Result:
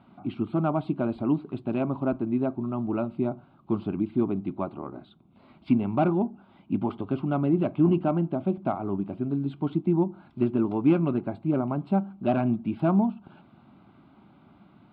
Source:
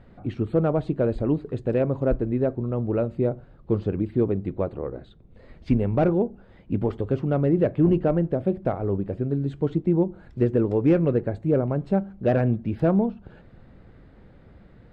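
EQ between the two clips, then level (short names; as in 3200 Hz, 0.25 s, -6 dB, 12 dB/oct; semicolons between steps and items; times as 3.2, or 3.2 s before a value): Chebyshev high-pass 260 Hz, order 2; LPF 2800 Hz 6 dB/oct; fixed phaser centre 1800 Hz, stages 6; +5.5 dB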